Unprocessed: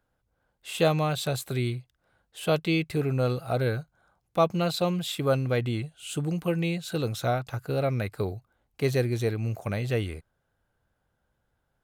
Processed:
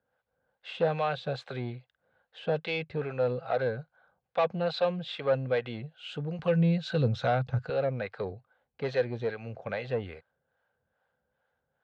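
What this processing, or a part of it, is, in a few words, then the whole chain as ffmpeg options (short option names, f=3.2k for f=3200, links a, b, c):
guitar amplifier with harmonic tremolo: -filter_complex "[0:a]acrossover=split=470[a][b];[a]aeval=exprs='val(0)*(1-0.7/2+0.7/2*cos(2*PI*2.4*n/s))':c=same[c];[b]aeval=exprs='val(0)*(1-0.7/2-0.7/2*cos(2*PI*2.4*n/s))':c=same[d];[c][d]amix=inputs=2:normalize=0,asoftclip=type=tanh:threshold=-22.5dB,highpass=110,equalizer=f=110:t=q:w=4:g=-6,equalizer=f=180:t=q:w=4:g=-3,equalizer=f=320:t=q:w=4:g=-10,equalizer=f=510:t=q:w=4:g=8,equalizer=f=790:t=q:w=4:g=4,equalizer=f=1.6k:t=q:w=4:g=6,lowpass=f=4.1k:w=0.5412,lowpass=f=4.1k:w=1.3066,asettb=1/sr,asplit=3[e][f][g];[e]atrim=end=6.394[h];[f]atrim=start=6.39:end=7.7,asetpts=PTS-STARTPTS,afade=t=in:d=0.004:c=qsin,afade=t=out:st=1.306:d=0.004:c=qsin,bass=f=250:g=14,treble=f=4k:g=7[i];[g]atrim=start=7.696[j];[h][i]acrossfade=d=0.004:c1=hsin:c2=qsin[k];[k][j]acrossfade=d=0.004:c1=qsin:c2=hsin"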